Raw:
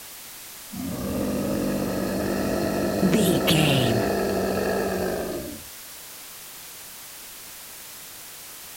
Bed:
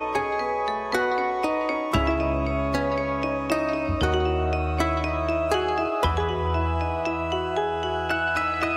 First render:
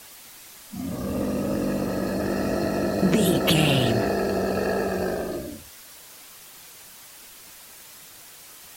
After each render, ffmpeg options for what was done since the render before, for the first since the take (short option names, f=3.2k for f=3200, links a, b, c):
-af "afftdn=nr=6:nf=-41"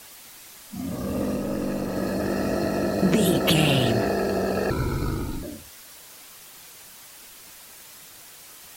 -filter_complex "[0:a]asettb=1/sr,asplit=3[a][b][c];[a]atrim=end=1.364[d];[b]atrim=start=1.36:end=1.96,asetpts=PTS-STARTPTS,afade=t=in:d=0.004:c=qsin,afade=t=out:st=0.596:d=0.004:c=qsin,aeval=exprs='(tanh(7.94*val(0)+0.45)-tanh(0.45))/7.94':c=same[e];[c]atrim=start=1.956[f];[d][e]acrossfade=d=0.004:c1=hsin:c2=qsin[g];[g][f]acrossfade=d=0.004:c1=qsin:c2=hsin,asettb=1/sr,asplit=3[h][i][j];[h]atrim=end=4.704[k];[i]atrim=start=4.7:end=5.43,asetpts=PTS-STARTPTS,afade=t=in:d=0.004:c=qsin,afade=t=out:st=0.726:d=0.004:c=qsin,afreqshift=-320[l];[j]atrim=start=5.426[m];[k][l]acrossfade=d=0.004:c1=hsin:c2=qsin[n];[n][m]acrossfade=d=0.004:c1=qsin:c2=hsin"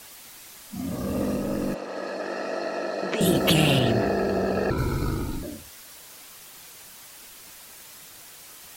-filter_complex "[0:a]asettb=1/sr,asplit=3[a][b][c];[a]atrim=end=1.744[d];[b]atrim=start=1.74:end=3.21,asetpts=PTS-STARTPTS,afade=t=in:d=0.004:c=qsin,afade=t=out:st=1.466:d=0.004:c=qsin,highpass=510,lowpass=4.9k[e];[c]atrim=start=3.206[f];[d][e]acrossfade=d=0.004:c1=hsin:c2=qsin[g];[g][f]acrossfade=d=0.004:c1=qsin:c2=hsin,asettb=1/sr,asplit=3[h][i][j];[h]atrim=end=3.794[k];[i]atrim=start=3.79:end=4.78,asetpts=PTS-STARTPTS,afade=t=in:d=0.004:c=qsin,afade=t=out:st=0.986:d=0.004:c=qsin,equalizer=f=12k:w=0.47:g=-10[l];[j]atrim=start=4.776[m];[k][l]acrossfade=d=0.004:c1=hsin:c2=qsin[n];[n][m]acrossfade=d=0.004:c1=qsin:c2=hsin"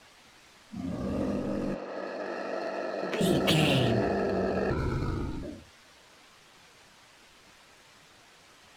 -af "adynamicsmooth=sensitivity=7:basefreq=3.9k,flanger=delay=7.3:depth=9.2:regen=-52:speed=1.4:shape=triangular"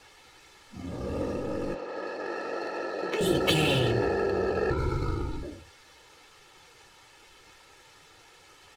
-af "aecho=1:1:2.3:0.6"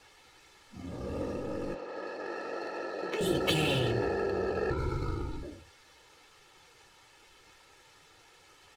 -af "volume=-4dB"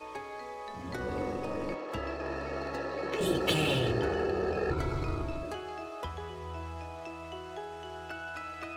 -filter_complex "[1:a]volume=-16dB[a];[0:a][a]amix=inputs=2:normalize=0"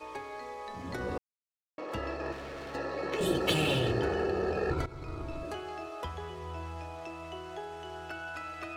-filter_complex "[0:a]asettb=1/sr,asplit=3[a][b][c];[a]atrim=end=2.324[d];[b]atrim=start=2.32:end=2.75,asetpts=PTS-STARTPTS,afade=t=in:d=0.004:c=qsin,afade=t=out:st=0.426:d=0.004:c=qsin,asoftclip=type=hard:threshold=-39.5dB[e];[c]atrim=start=2.746[f];[d][e]acrossfade=d=0.004:c1=hsin:c2=qsin[g];[g][f]acrossfade=d=0.004:c1=qsin:c2=hsin,asplit=4[h][i][j][k];[h]atrim=end=1.18,asetpts=PTS-STARTPTS,afade=t=out:st=1.176:d=0.004:c=hsin[l];[i]atrim=start=1.18:end=1.78,asetpts=PTS-STARTPTS,volume=0[m];[j]atrim=start=1.78:end=4.86,asetpts=PTS-STARTPTS,afade=t=in:d=0.004:c=hsin,afade=t=out:st=3.076:d=0.004:c=hsin:silence=0.16788[n];[k]atrim=start=4.86,asetpts=PTS-STARTPTS,afade=t=in:d=0.69:silence=0.16788[o];[l][m][n][o]concat=n=4:v=0:a=1"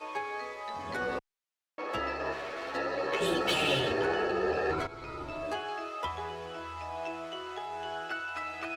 -filter_complex "[0:a]asplit=2[a][b];[b]highpass=f=720:p=1,volume=15dB,asoftclip=type=tanh:threshold=-14dB[c];[a][c]amix=inputs=2:normalize=0,lowpass=f=4.1k:p=1,volume=-6dB,asplit=2[d][e];[e]adelay=10.6,afreqshift=1.3[f];[d][f]amix=inputs=2:normalize=1"